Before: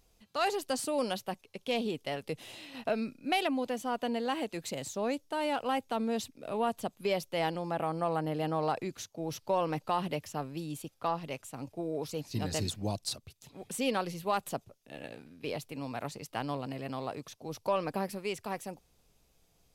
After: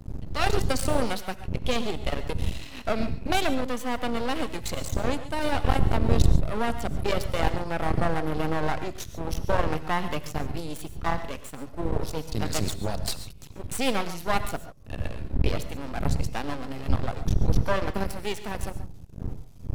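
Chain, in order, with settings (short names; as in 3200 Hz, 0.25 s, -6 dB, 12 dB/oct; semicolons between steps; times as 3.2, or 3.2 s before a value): wind noise 81 Hz -34 dBFS; half-wave rectifier; non-linear reverb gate 0.16 s rising, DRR 11 dB; gain +8.5 dB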